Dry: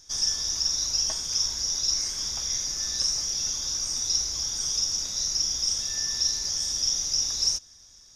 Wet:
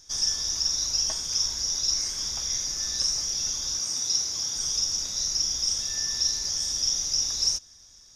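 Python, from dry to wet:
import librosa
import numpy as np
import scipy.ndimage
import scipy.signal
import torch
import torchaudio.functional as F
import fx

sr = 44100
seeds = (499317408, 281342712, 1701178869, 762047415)

y = fx.highpass(x, sr, hz=110.0, slope=12, at=(3.79, 4.55))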